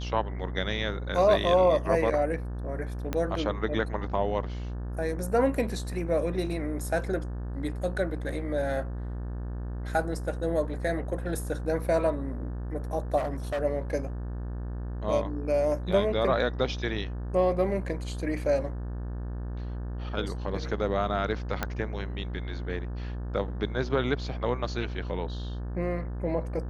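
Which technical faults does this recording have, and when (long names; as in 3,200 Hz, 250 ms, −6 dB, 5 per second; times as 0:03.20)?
mains buzz 60 Hz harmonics 30 −34 dBFS
0:03.13: click −15 dBFS
0:13.17–0:13.62: clipping −26.5 dBFS
0:21.63: click −13 dBFS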